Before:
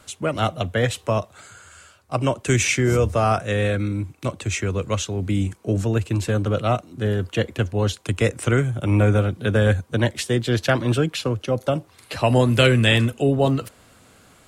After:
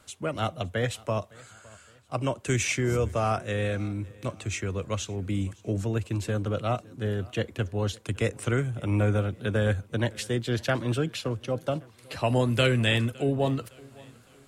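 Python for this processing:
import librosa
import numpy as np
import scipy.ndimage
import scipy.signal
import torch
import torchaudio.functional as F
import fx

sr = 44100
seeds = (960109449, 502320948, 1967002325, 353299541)

y = fx.echo_feedback(x, sr, ms=561, feedback_pct=43, wet_db=-24.0)
y = F.gain(torch.from_numpy(y), -7.0).numpy()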